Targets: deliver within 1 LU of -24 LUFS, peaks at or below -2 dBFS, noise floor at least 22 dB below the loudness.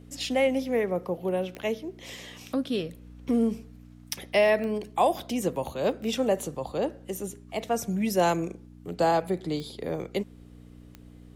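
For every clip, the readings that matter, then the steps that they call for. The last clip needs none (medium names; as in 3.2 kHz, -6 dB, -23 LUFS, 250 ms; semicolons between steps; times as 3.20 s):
clicks found 4; hum 60 Hz; highest harmonic 300 Hz; hum level -47 dBFS; loudness -28.0 LUFS; peak level -9.0 dBFS; loudness target -24.0 LUFS
-> de-click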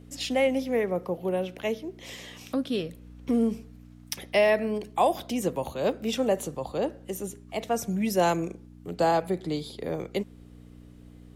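clicks found 0; hum 60 Hz; highest harmonic 300 Hz; hum level -47 dBFS
-> de-hum 60 Hz, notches 5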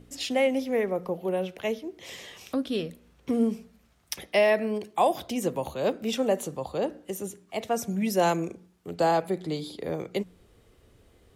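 hum not found; loudness -28.5 LUFS; peak level -9.0 dBFS; loudness target -24.0 LUFS
-> trim +4.5 dB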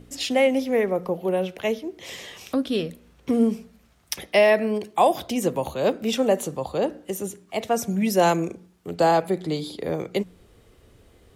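loudness -24.0 LUFS; peak level -4.5 dBFS; noise floor -57 dBFS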